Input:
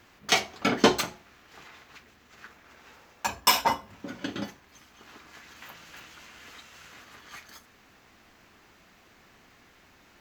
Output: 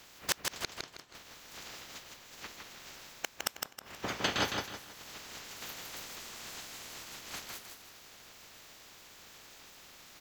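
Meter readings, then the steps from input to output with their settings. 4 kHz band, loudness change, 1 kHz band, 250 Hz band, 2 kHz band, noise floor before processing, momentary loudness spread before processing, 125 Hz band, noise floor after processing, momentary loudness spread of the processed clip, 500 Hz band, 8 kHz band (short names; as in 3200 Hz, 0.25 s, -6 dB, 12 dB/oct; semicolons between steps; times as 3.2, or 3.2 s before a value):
-7.0 dB, -13.0 dB, -12.5 dB, -13.5 dB, -7.0 dB, -59 dBFS, 23 LU, -6.5 dB, -57 dBFS, 18 LU, -12.0 dB, -5.5 dB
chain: spectral limiter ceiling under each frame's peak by 20 dB; flipped gate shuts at -17 dBFS, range -40 dB; feedback echo 0.159 s, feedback 33%, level -4 dB; gain +2 dB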